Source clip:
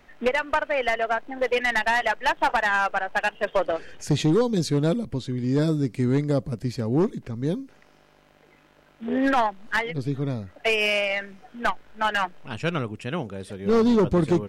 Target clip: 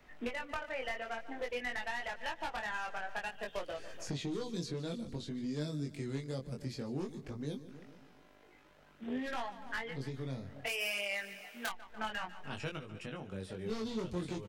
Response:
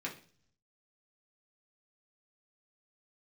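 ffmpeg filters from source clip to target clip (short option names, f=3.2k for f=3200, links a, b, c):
-filter_complex "[0:a]asettb=1/sr,asplit=3[a][b][c];[a]atrim=end=3.264[d];[b]atrim=start=3.26:end=4.08,asetpts=PTS-STARTPTS,afade=t=in:d=0.004:c=qsin,afade=t=out:st=0.816:d=0.004:c=qsin,highshelf=f=7k:g=10.5[e];[c]atrim=start=4.076[f];[d][e]acrossfade=d=0.004:c1=hsin:c2=qsin[g];[g][f]acrossfade=d=0.004:c1=qsin:c2=hsin,asettb=1/sr,asplit=3[h][i][j];[h]atrim=end=12.774[k];[i]atrim=start=12.77:end=13.32,asetpts=PTS-STARTPTS,afade=t=in:d=0.004:c=qsin,afade=t=out:st=0.546:d=0.004:c=qsin,acompressor=threshold=-33dB:ratio=6[l];[j]atrim=start=13.316[m];[k][l]acrossfade=d=0.004:c1=hsin:c2=qsin[n];[n][m]acrossfade=d=0.004:c1=qsin:c2=hsin,aecho=1:1:145|290|435|580|725:0.112|0.0617|0.0339|0.0187|0.0103,acrossover=split=170|2500|6500[o][p][q][r];[o]acompressor=threshold=-40dB:ratio=4[s];[p]acompressor=threshold=-34dB:ratio=4[t];[q]acompressor=threshold=-41dB:ratio=4[u];[r]acompressor=threshold=-56dB:ratio=4[v];[s][t][u][v]amix=inputs=4:normalize=0,asplit=3[w][x][y];[w]afade=t=out:st=10.66:d=0.02[z];[x]aemphasis=mode=production:type=riaa,afade=t=in:st=10.66:d=0.02,afade=t=out:st=11.69:d=0.02[aa];[y]afade=t=in:st=11.69:d=0.02[ab];[z][aa][ab]amix=inputs=3:normalize=0,flanger=delay=20:depth=3:speed=0.54,volume=-3dB"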